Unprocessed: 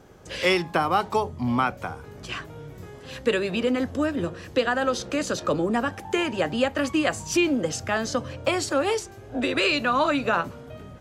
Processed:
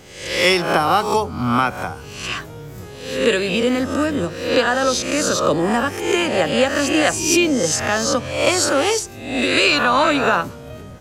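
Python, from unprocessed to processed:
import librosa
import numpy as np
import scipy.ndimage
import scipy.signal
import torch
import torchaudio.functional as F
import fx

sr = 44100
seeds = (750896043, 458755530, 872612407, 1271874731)

y = fx.spec_swells(x, sr, rise_s=0.68)
y = fx.bass_treble(y, sr, bass_db=0, treble_db=6)
y = F.gain(torch.from_numpy(y), 4.0).numpy()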